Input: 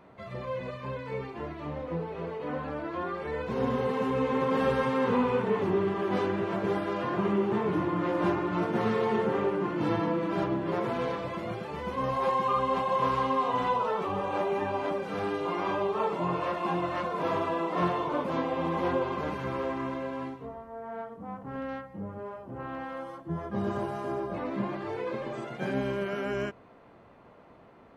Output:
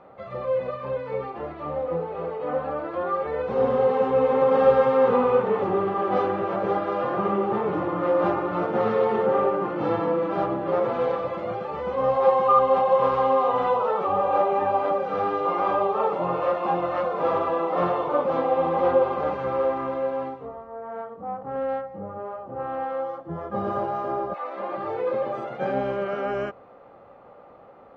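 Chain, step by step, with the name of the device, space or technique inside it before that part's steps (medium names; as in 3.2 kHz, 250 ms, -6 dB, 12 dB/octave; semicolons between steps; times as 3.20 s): inside a cardboard box (low-pass 4.7 kHz 12 dB/octave; small resonant body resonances 550/780/1200 Hz, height 14 dB, ringing for 30 ms); 24.33–24.76 s: high-pass 1.2 kHz -> 300 Hz 12 dB/octave; trim -1.5 dB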